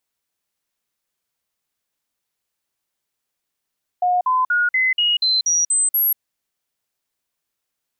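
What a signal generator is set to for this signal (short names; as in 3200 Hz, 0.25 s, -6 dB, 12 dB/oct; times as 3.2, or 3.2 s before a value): stepped sine 721 Hz up, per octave 2, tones 9, 0.19 s, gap 0.05 s -14.5 dBFS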